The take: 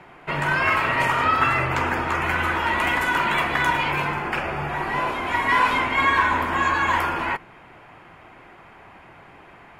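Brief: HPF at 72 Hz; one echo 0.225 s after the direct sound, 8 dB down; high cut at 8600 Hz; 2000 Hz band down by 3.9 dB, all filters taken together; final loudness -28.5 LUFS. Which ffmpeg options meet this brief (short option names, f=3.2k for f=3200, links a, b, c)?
-af "highpass=72,lowpass=8.6k,equalizer=f=2k:t=o:g=-5,aecho=1:1:225:0.398,volume=-5.5dB"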